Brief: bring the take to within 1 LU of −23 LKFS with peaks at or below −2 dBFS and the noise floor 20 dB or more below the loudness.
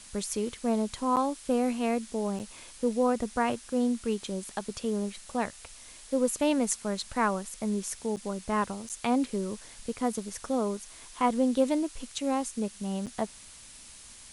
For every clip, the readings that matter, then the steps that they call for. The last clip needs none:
number of dropouts 5; longest dropout 8.2 ms; background noise floor −50 dBFS; target noise floor −51 dBFS; integrated loudness −30.5 LKFS; sample peak −10.5 dBFS; target loudness −23.0 LKFS
→ repair the gap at 0:01.16/0:02.39/0:08.16/0:08.89/0:13.06, 8.2 ms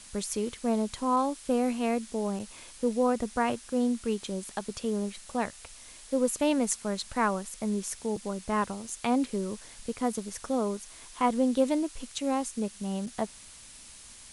number of dropouts 0; background noise floor −50 dBFS; target noise floor −51 dBFS
→ broadband denoise 6 dB, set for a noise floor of −50 dBFS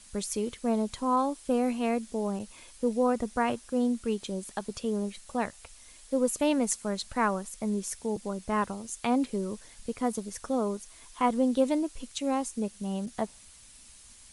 background noise floor −53 dBFS; integrated loudness −30.5 LKFS; sample peak −10.5 dBFS; target loudness −23.0 LKFS
→ level +7.5 dB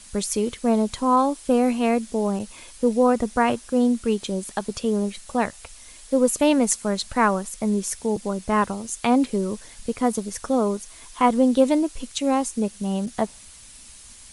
integrated loudness −23.0 LKFS; sample peak −3.0 dBFS; background noise floor −46 dBFS

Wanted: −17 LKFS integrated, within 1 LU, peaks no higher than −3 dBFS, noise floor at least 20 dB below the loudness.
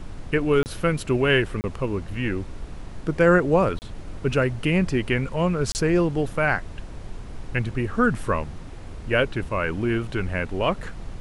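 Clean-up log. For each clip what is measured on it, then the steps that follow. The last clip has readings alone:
number of dropouts 4; longest dropout 29 ms; background noise floor −38 dBFS; target noise floor −44 dBFS; integrated loudness −23.5 LKFS; sample peak −6.5 dBFS; target loudness −17.0 LKFS
→ repair the gap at 0:00.63/0:01.61/0:03.79/0:05.72, 29 ms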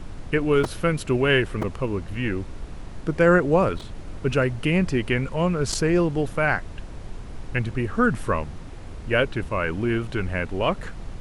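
number of dropouts 0; background noise floor −38 dBFS; target noise floor −44 dBFS
→ noise reduction from a noise print 6 dB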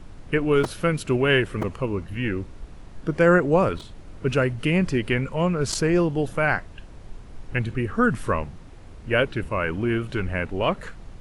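background noise floor −43 dBFS; target noise floor −44 dBFS
→ noise reduction from a noise print 6 dB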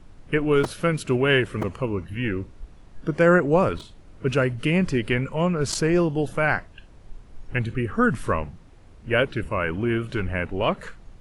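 background noise floor −48 dBFS; integrated loudness −23.5 LKFS; sample peak −6.5 dBFS; target loudness −17.0 LKFS
→ level +6.5 dB
brickwall limiter −3 dBFS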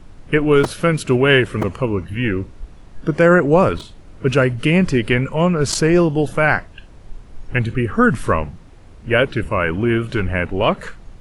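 integrated loudness −17.5 LKFS; sample peak −3.0 dBFS; background noise floor −42 dBFS

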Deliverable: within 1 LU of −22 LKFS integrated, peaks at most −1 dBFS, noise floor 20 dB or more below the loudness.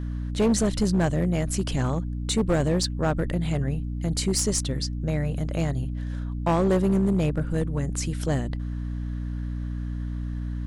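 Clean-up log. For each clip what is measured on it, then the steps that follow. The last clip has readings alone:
share of clipped samples 1.8%; peaks flattened at −16.5 dBFS; mains hum 60 Hz; hum harmonics up to 300 Hz; level of the hum −28 dBFS; integrated loudness −26.0 LKFS; sample peak −16.5 dBFS; target loudness −22.0 LKFS
→ clipped peaks rebuilt −16.5 dBFS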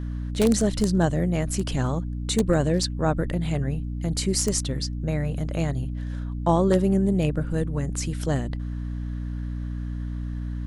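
share of clipped samples 0.0%; mains hum 60 Hz; hum harmonics up to 300 Hz; level of the hum −27 dBFS
→ hum removal 60 Hz, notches 5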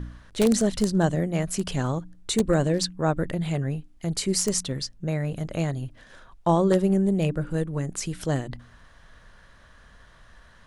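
mains hum none found; integrated loudness −25.5 LKFS; sample peak −7.0 dBFS; target loudness −22.0 LKFS
→ level +3.5 dB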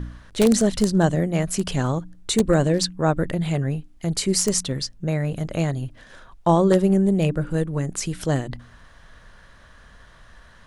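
integrated loudness −22.0 LKFS; sample peak −3.5 dBFS; background noise floor −50 dBFS

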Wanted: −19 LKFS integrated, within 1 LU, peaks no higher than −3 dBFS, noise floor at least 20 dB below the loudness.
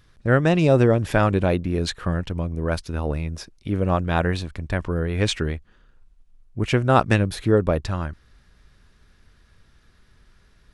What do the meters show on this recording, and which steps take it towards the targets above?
integrated loudness −22.5 LKFS; sample peak −1.5 dBFS; target loudness −19.0 LKFS
→ level +3.5 dB
brickwall limiter −3 dBFS

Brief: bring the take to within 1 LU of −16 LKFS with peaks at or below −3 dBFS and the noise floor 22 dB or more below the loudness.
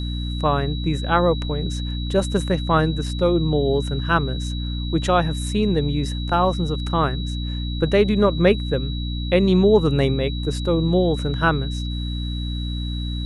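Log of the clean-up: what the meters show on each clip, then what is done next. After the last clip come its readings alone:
mains hum 60 Hz; hum harmonics up to 300 Hz; level of the hum −24 dBFS; interfering tone 3,900 Hz; level of the tone −34 dBFS; integrated loudness −21.5 LKFS; sample peak −3.0 dBFS; target loudness −16.0 LKFS
→ mains-hum notches 60/120/180/240/300 Hz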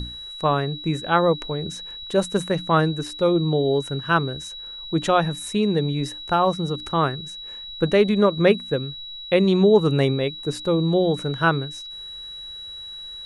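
mains hum none found; interfering tone 3,900 Hz; level of the tone −34 dBFS
→ notch filter 3,900 Hz, Q 30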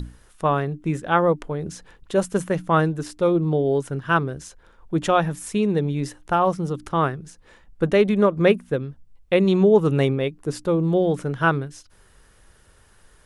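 interfering tone none found; integrated loudness −22.0 LKFS; sample peak −4.5 dBFS; target loudness −16.0 LKFS
→ level +6 dB
brickwall limiter −3 dBFS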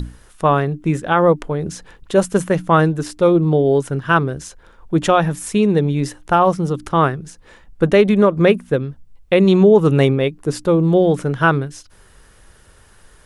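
integrated loudness −16.5 LKFS; sample peak −3.0 dBFS; background noise floor −49 dBFS

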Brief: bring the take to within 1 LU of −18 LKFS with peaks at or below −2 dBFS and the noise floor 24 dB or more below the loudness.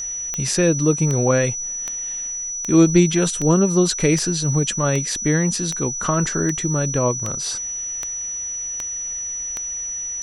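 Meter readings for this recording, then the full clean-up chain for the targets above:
number of clicks 13; interfering tone 5,900 Hz; level of the tone −25 dBFS; integrated loudness −20.0 LKFS; sample peak −2.0 dBFS; target loudness −18.0 LKFS
→ click removal
notch filter 5,900 Hz, Q 30
level +2 dB
brickwall limiter −2 dBFS

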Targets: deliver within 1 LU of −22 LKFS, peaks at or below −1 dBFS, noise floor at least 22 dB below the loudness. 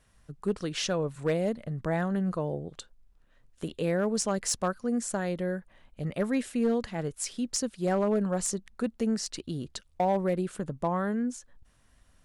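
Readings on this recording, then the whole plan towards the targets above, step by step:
share of clipped samples 0.5%; peaks flattened at −19.5 dBFS; integrated loudness −30.5 LKFS; sample peak −19.5 dBFS; target loudness −22.0 LKFS
→ clipped peaks rebuilt −19.5 dBFS
level +8.5 dB

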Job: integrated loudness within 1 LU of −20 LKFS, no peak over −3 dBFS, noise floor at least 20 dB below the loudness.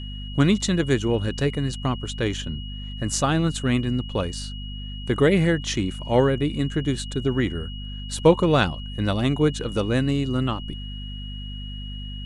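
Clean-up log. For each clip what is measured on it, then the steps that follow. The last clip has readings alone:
mains hum 50 Hz; hum harmonics up to 250 Hz; level of the hum −31 dBFS; interfering tone 2,900 Hz; level of the tone −39 dBFS; integrated loudness −23.5 LKFS; sample peak −4.5 dBFS; target loudness −20.0 LKFS
→ mains-hum notches 50/100/150/200/250 Hz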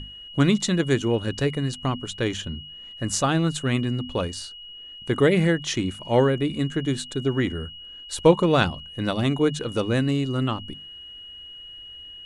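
mains hum none found; interfering tone 2,900 Hz; level of the tone −39 dBFS
→ notch filter 2,900 Hz, Q 30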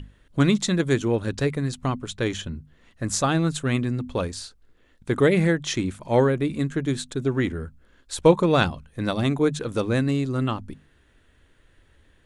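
interfering tone none found; integrated loudness −24.0 LKFS; sample peak −4.0 dBFS; target loudness −20.0 LKFS
→ level +4 dB
brickwall limiter −3 dBFS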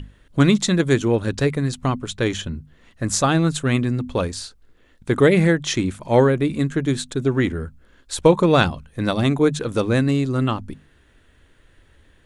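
integrated loudness −20.0 LKFS; sample peak −3.0 dBFS; background noise floor −56 dBFS

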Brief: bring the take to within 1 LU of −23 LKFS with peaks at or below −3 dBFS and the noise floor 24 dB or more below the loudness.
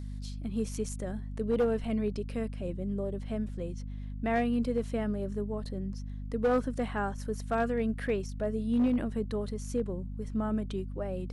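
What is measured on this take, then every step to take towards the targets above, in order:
share of clipped samples 0.7%; peaks flattened at −21.5 dBFS; mains hum 50 Hz; hum harmonics up to 250 Hz; level of the hum −36 dBFS; integrated loudness −33.0 LKFS; sample peak −21.5 dBFS; target loudness −23.0 LKFS
→ clipped peaks rebuilt −21.5 dBFS
mains-hum notches 50/100/150/200/250 Hz
level +10 dB

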